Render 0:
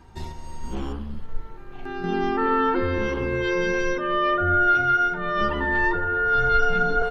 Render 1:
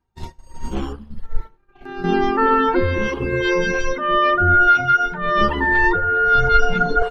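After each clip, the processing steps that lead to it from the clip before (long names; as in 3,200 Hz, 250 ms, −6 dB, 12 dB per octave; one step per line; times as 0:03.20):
downward expander −25 dBFS
reverb reduction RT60 1.5 s
level +8 dB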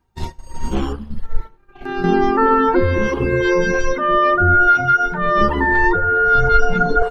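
dynamic equaliser 3,000 Hz, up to −8 dB, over −35 dBFS, Q 1.1
in parallel at +3 dB: downward compressor, threshold −26 dBFS, peak gain reduction 15.5 dB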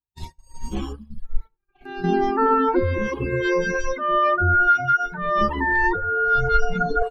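spectral dynamics exaggerated over time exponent 1.5
level −3 dB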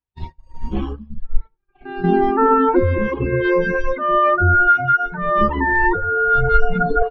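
high-frequency loss of the air 350 metres
level +5.5 dB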